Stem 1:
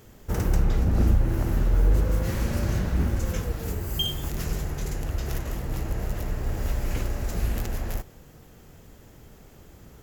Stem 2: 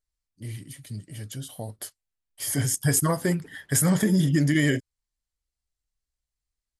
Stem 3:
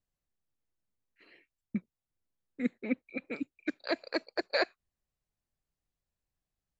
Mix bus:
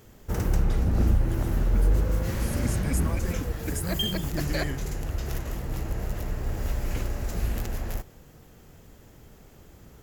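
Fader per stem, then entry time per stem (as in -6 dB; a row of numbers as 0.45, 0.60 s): -1.5, -12.5, -3.0 dB; 0.00, 0.00, 0.00 s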